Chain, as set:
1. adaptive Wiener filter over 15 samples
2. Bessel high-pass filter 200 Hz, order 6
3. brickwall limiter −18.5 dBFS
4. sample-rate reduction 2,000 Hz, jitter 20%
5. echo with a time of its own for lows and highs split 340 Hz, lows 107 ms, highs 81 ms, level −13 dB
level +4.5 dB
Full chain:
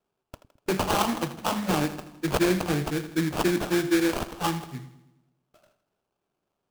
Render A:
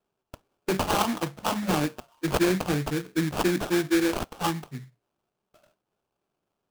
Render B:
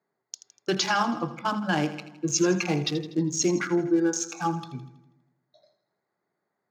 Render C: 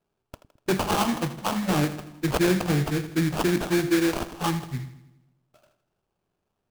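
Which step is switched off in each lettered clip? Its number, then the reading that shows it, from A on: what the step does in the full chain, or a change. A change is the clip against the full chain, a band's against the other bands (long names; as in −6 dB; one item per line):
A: 5, echo-to-direct ratio −11.5 dB to none audible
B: 4, 8 kHz band +6.5 dB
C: 2, 125 Hz band +4.0 dB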